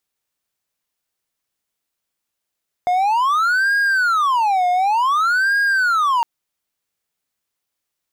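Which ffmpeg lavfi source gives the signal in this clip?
ffmpeg -f lavfi -i "aevalsrc='0.251*(1-4*abs(mod((1173*t-457/(2*PI*0.55)*sin(2*PI*0.55*t))+0.25,1)-0.5))':duration=3.36:sample_rate=44100" out.wav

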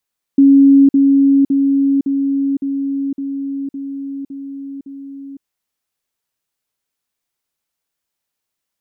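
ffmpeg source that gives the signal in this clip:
ffmpeg -f lavfi -i "aevalsrc='pow(10,(-4.5-3*floor(t/0.56))/20)*sin(2*PI*276*t)*clip(min(mod(t,0.56),0.51-mod(t,0.56))/0.005,0,1)':duration=5.04:sample_rate=44100" out.wav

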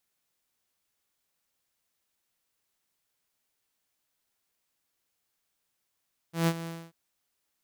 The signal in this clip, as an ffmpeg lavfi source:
ffmpeg -f lavfi -i "aevalsrc='0.119*(2*mod(166*t,1)-1)':duration=0.59:sample_rate=44100,afade=type=in:duration=0.143,afade=type=out:start_time=0.143:duration=0.057:silence=0.2,afade=type=out:start_time=0.34:duration=0.25" out.wav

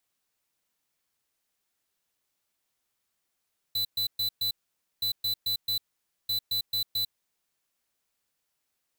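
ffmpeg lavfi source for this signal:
ffmpeg -f lavfi -i "aevalsrc='0.0398*(2*lt(mod(4000*t,1),0.5)-1)*clip(min(mod(mod(t,1.27),0.22),0.1-mod(mod(t,1.27),0.22))/0.005,0,1)*lt(mod(t,1.27),0.88)':duration=3.81:sample_rate=44100" out.wav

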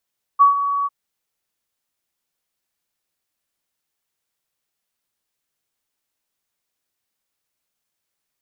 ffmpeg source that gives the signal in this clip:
ffmpeg -f lavfi -i "aevalsrc='0.473*sin(2*PI*1130*t)':duration=0.5:sample_rate=44100,afade=type=in:duration=0.025,afade=type=out:start_time=0.025:duration=0.125:silence=0.266,afade=type=out:start_time=0.47:duration=0.03" out.wav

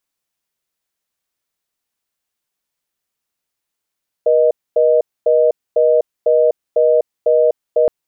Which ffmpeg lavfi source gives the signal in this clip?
ffmpeg -f lavfi -i "aevalsrc='0.251*(sin(2*PI*480*t)+sin(2*PI*620*t))*clip(min(mod(t,0.5),0.25-mod(t,0.5))/0.005,0,1)':duration=3.62:sample_rate=44100" out.wav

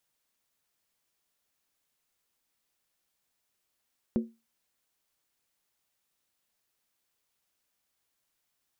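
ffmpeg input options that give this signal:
ffmpeg -f lavfi -i "aevalsrc='0.0944*pow(10,-3*t/0.26)*sin(2*PI*228*t)+0.0398*pow(10,-3*t/0.206)*sin(2*PI*363.4*t)+0.0168*pow(10,-3*t/0.178)*sin(2*PI*487*t)+0.00708*pow(10,-3*t/0.172)*sin(2*PI*523.5*t)+0.00299*pow(10,-3*t/0.16)*sin(2*PI*604.9*t)':duration=0.63:sample_rate=44100" out.wav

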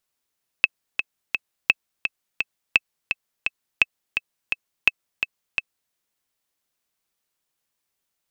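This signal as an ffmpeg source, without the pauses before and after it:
ffmpeg -f lavfi -i "aevalsrc='pow(10,(-1-7.5*gte(mod(t,3*60/170),60/170))/20)*sin(2*PI*2610*mod(t,60/170))*exp(-6.91*mod(t,60/170)/0.03)':duration=5.29:sample_rate=44100" out.wav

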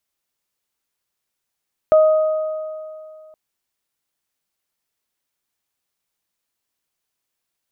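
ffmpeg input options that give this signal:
ffmpeg -f lavfi -i "aevalsrc='0.422*pow(10,-3*t/2.42)*sin(2*PI*625*t)+0.075*pow(10,-3*t/2.3)*sin(2*PI*1250*t)':duration=1.42:sample_rate=44100" out.wav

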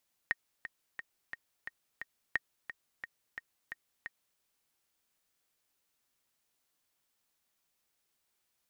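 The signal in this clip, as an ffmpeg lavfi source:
ffmpeg -f lavfi -i "aevalsrc='pow(10,(-16-11.5*gte(mod(t,6*60/176),60/176))/20)*sin(2*PI*1860*mod(t,60/176))*exp(-6.91*mod(t,60/176)/0.03)':duration=4.09:sample_rate=44100" out.wav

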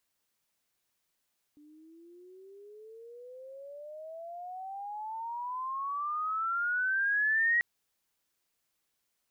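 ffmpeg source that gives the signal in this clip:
ffmpeg -f lavfi -i "aevalsrc='pow(10,(-23+30.5*(t/6.04-1))/20)*sin(2*PI*293*6.04/(32.5*log(2)/12)*(exp(32.5*log(2)/12*t/6.04)-1))':duration=6.04:sample_rate=44100" out.wav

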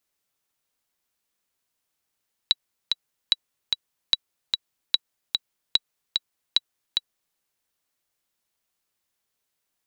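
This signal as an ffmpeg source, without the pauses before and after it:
ffmpeg -f lavfi -i "aevalsrc='pow(10,(-4.5-4*gte(mod(t,2*60/148),60/148))/20)*sin(2*PI*3910*mod(t,60/148))*exp(-6.91*mod(t,60/148)/0.03)':duration=4.86:sample_rate=44100" out.wav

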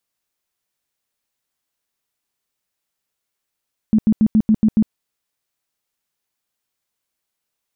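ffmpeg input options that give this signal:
ffmpeg -f lavfi -i "aevalsrc='0.335*sin(2*PI*217*mod(t,0.14))*lt(mod(t,0.14),12/217)':duration=0.98:sample_rate=44100" out.wav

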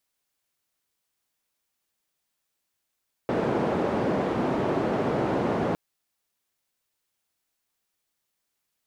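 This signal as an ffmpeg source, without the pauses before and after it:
ffmpeg -f lavfi -i "anoisesrc=color=white:duration=2.46:sample_rate=44100:seed=1,highpass=frequency=150,lowpass=frequency=530,volume=-3.6dB" out.wav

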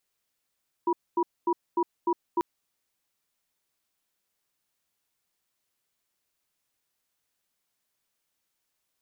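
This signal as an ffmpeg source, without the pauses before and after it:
ffmpeg -f lavfi -i "aevalsrc='0.0631*(sin(2*PI*347*t)+sin(2*PI*969*t))*clip(min(mod(t,0.3),0.06-mod(t,0.3))/0.005,0,1)':duration=1.54:sample_rate=44100" out.wav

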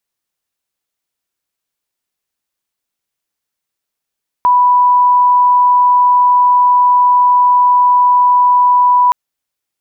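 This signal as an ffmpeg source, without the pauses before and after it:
ffmpeg -f lavfi -i "aevalsrc='0.501*sin(2*PI*987*t)':duration=4.67:sample_rate=44100" out.wav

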